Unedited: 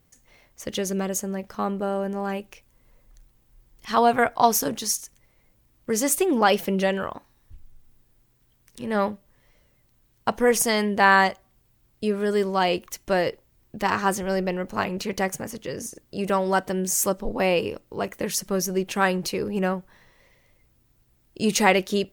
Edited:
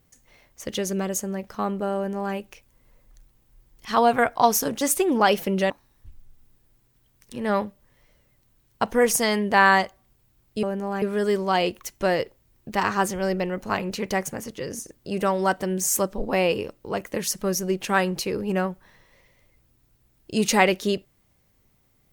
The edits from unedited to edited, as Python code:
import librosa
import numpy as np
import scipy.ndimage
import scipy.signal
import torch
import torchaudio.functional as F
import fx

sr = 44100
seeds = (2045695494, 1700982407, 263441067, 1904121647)

y = fx.edit(x, sr, fx.duplicate(start_s=1.96, length_s=0.39, to_s=12.09),
    fx.cut(start_s=4.81, length_s=1.21),
    fx.cut(start_s=6.91, length_s=0.25), tone=tone)